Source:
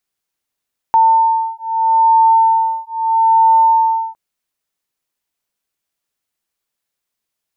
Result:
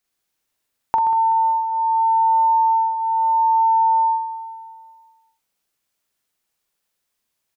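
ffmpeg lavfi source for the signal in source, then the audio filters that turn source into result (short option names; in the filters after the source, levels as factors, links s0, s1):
-f lavfi -i "aevalsrc='0.237*(sin(2*PI*899*t)+sin(2*PI*899.78*t))':d=3.21:s=44100"
-filter_complex "[0:a]asplit=2[s0][s1];[s1]aecho=0:1:43.73|128.3:0.891|0.562[s2];[s0][s2]amix=inputs=2:normalize=0,acompressor=threshold=0.141:ratio=6,asplit=2[s3][s4];[s4]aecho=0:1:189|378|567|756|945|1134:0.168|0.0957|0.0545|0.0311|0.0177|0.0101[s5];[s3][s5]amix=inputs=2:normalize=0"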